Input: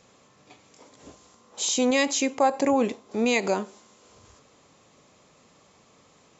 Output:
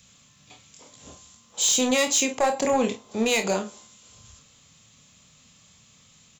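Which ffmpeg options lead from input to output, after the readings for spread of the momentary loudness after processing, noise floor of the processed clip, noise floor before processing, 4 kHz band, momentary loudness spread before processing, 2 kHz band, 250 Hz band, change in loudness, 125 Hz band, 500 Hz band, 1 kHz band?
8 LU, −57 dBFS, −59 dBFS, +4.0 dB, 7 LU, +1.0 dB, −1.5 dB, +1.5 dB, can't be measured, 0.0 dB, −1.0 dB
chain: -filter_complex "[0:a]acrossover=split=320|1300[link_01][link_02][link_03];[link_01]aecho=1:1:1.4:0.83[link_04];[link_02]agate=range=-33dB:threshold=-52dB:ratio=3:detection=peak[link_05];[link_03]aexciter=amount=1.5:drive=7.3:freq=2800[link_06];[link_04][link_05][link_06]amix=inputs=3:normalize=0,asoftclip=type=hard:threshold=-17dB,aecho=1:1:27|51:0.447|0.237"

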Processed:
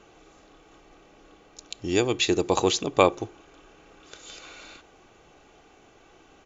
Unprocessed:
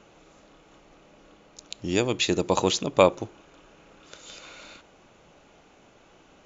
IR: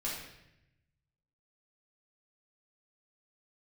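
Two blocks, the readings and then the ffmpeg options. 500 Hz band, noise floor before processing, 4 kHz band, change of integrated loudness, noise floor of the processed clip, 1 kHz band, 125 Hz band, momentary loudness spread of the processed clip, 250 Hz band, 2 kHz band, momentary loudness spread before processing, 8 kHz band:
0.0 dB, −57 dBFS, +0.5 dB, 0.0 dB, −56 dBFS, +0.5 dB, −1.5 dB, 21 LU, +0.5 dB, +0.5 dB, 22 LU, can't be measured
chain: -af "aecho=1:1:2.6:0.39"

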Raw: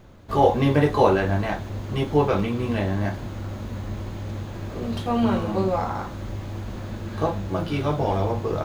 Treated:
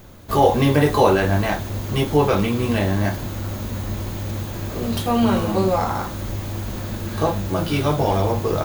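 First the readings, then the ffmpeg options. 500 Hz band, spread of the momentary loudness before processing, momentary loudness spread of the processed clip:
+3.0 dB, 14 LU, 12 LU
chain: -filter_complex "[0:a]aemphasis=mode=production:type=50fm,asplit=2[link_01][link_02];[link_02]alimiter=limit=-15dB:level=0:latency=1:release=37,volume=-3dB[link_03];[link_01][link_03]amix=inputs=2:normalize=0"

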